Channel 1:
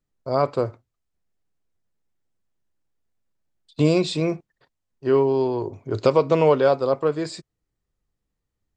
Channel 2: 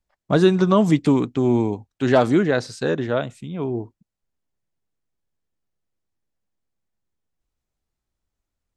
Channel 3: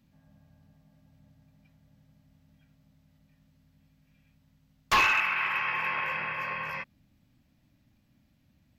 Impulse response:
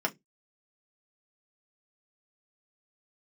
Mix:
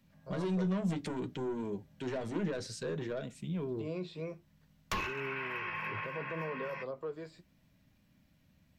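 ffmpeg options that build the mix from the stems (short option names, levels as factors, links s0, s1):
-filter_complex "[0:a]acrossover=split=3600[s0][s1];[s1]acompressor=threshold=0.00282:ratio=4:attack=1:release=60[s2];[s0][s2]amix=inputs=2:normalize=0,volume=0.2,asplit=3[s3][s4][s5];[s4]volume=0.0841[s6];[1:a]equalizer=f=1000:t=o:w=1:g=-7.5,asoftclip=type=tanh:threshold=0.119,volume=0.75,asplit=2[s7][s8];[s8]volume=0.0891[s9];[2:a]volume=0.944,asplit=2[s10][s11];[s11]volume=0.15[s12];[s5]apad=whole_len=387401[s13];[s10][s13]sidechaincompress=threshold=0.0178:ratio=8:attack=7:release=643[s14];[s3][s7]amix=inputs=2:normalize=0,flanger=delay=3.9:depth=7.7:regen=44:speed=0.61:shape=triangular,alimiter=level_in=2.11:limit=0.0631:level=0:latency=1:release=36,volume=0.473,volume=1[s15];[3:a]atrim=start_sample=2205[s16];[s6][s9][s12]amix=inputs=3:normalize=0[s17];[s17][s16]afir=irnorm=-1:irlink=0[s18];[s14][s15][s18]amix=inputs=3:normalize=0,acrossover=split=370[s19][s20];[s20]acompressor=threshold=0.0126:ratio=4[s21];[s19][s21]amix=inputs=2:normalize=0"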